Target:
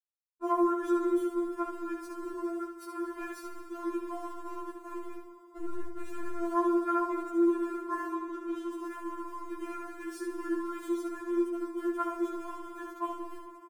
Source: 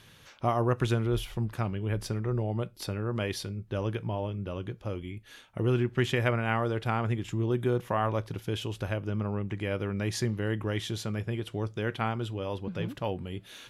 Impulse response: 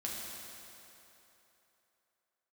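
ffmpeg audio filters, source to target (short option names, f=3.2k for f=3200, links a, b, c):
-filter_complex "[0:a]aeval=exprs='val(0)*gte(abs(val(0)),0.015)':c=same,asettb=1/sr,asplit=3[a][b][c];[a]atrim=end=5.584[d];[b]atrim=start=5.58:end=6.41,asetpts=PTS-STARTPTS,afade=t=in:d=0.004:c=qsin,afade=t=out:st=0.826:d=0.004:c=qsin,aeval=exprs='(tanh(39.8*val(0)+0.7)-tanh(0.7))/39.8':c=same[e];[c]atrim=start=6.406[f];[d][e]acrossfade=d=0.004:c1=hsin:c2=qsin[g];[g][f]acrossfade=d=0.004:c1=qsin:c2=hsin,firequalizer=gain_entry='entry(200,0);entry(410,9);entry(730,-3);entry(1100,13);entry(2000,-5);entry(3400,-9);entry(8300,8)':delay=0.05:min_phase=1,aecho=1:1:70:0.501,asettb=1/sr,asplit=3[h][i][j];[h]atrim=end=2.404[k];[i]atrim=start=2.4:end=3.22,asetpts=PTS-STARTPTS,afade=t=in:d=0.004:c=qsin,afade=t=out:st=0.816:d=0.004:c=qsin,afreqshift=23[l];[j]atrim=start=3.216[m];[k][l]acrossfade=d=0.004:c1=hsin:c2=qsin[n];[n][m]acrossfade=d=0.004:c1=qsin:c2=hsin,bandreject=f=60:t=h:w=6,bandreject=f=120:t=h:w=6,bandreject=f=180:t=h:w=6,bandreject=f=240:t=h:w=6,bandreject=f=300:t=h:w=6,bandreject=f=360:t=h:w=6,asplit=2[o][p];[1:a]atrim=start_sample=2205,adelay=139[q];[p][q]afir=irnorm=-1:irlink=0,volume=-10.5dB[r];[o][r]amix=inputs=2:normalize=0,asettb=1/sr,asplit=3[s][t][u];[s]atrim=end=8.144[v];[t]atrim=start=8.14:end=8.73,asetpts=PTS-STARTPTS,afade=t=in:d=0.004:c=qsin,afade=t=out:st=0.586:d=0.004:c=qsin,acrossover=split=6300[w][x];[x]acompressor=threshold=-49dB:ratio=4:attack=1:release=60[y];[w][y]amix=inputs=2:normalize=0[z];[u]atrim=start=8.726[aa];[v][z]acrossfade=d=0.004:c1=hsin:c2=qsin[ab];[ab][aa]acrossfade=d=0.004:c1=qsin:c2=hsin,aemphasis=mode=reproduction:type=50kf,afftfilt=real='re*4*eq(mod(b,16),0)':imag='im*4*eq(mod(b,16),0)':win_size=2048:overlap=0.75,volume=-5dB"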